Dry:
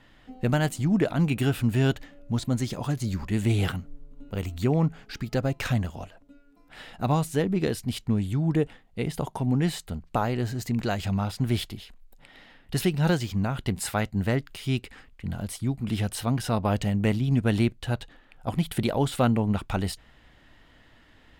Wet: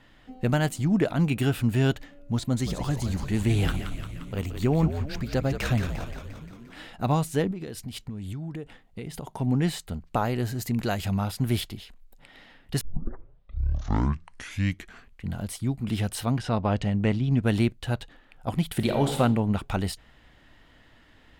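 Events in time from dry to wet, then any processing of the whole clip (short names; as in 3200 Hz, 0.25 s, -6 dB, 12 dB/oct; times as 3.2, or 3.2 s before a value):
2.39–6.87 frequency-shifting echo 0.175 s, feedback 62%, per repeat -71 Hz, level -8 dB
7.51–9.4 compressor 12:1, threshold -31 dBFS
10.25–11.61 bell 12000 Hz +9.5 dB 0.56 oct
12.81 tape start 2.44 s
16.38–17.44 air absorption 82 m
18.75–19.18 reverb throw, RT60 0.93 s, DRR 4.5 dB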